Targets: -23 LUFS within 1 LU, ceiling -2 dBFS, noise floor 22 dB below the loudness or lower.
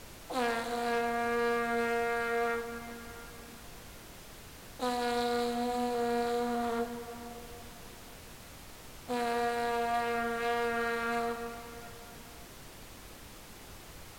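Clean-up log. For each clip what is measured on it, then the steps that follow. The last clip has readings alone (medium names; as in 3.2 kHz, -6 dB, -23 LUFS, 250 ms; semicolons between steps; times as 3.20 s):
clipped samples 0.2%; clipping level -22.0 dBFS; noise floor -50 dBFS; noise floor target -55 dBFS; loudness -33.0 LUFS; peak level -22.0 dBFS; loudness target -23.0 LUFS
-> clip repair -22 dBFS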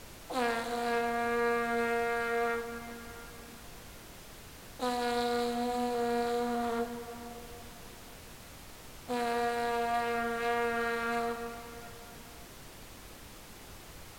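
clipped samples 0.0%; noise floor -50 dBFS; noise floor target -55 dBFS
-> noise print and reduce 6 dB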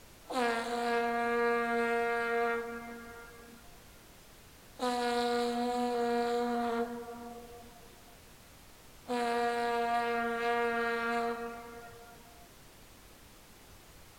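noise floor -56 dBFS; loudness -32.5 LUFS; peak level -18.5 dBFS; loudness target -23.0 LUFS
-> trim +9.5 dB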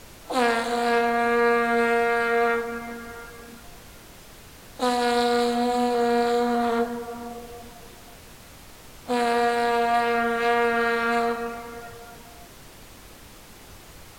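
loudness -23.0 LUFS; peak level -9.0 dBFS; noise floor -47 dBFS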